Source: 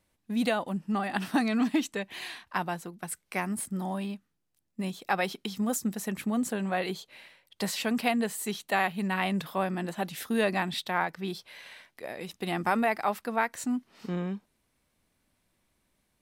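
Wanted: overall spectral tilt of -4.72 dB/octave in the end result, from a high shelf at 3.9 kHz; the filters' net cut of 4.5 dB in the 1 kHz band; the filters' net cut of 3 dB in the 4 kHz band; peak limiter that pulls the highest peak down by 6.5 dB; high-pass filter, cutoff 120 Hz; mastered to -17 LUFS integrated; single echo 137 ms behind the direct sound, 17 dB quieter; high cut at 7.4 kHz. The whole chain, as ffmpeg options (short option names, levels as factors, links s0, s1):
-af "highpass=120,lowpass=7400,equalizer=f=1000:t=o:g=-6.5,highshelf=f=3900:g=5,equalizer=f=4000:t=o:g=-6,alimiter=limit=0.0944:level=0:latency=1,aecho=1:1:137:0.141,volume=6.68"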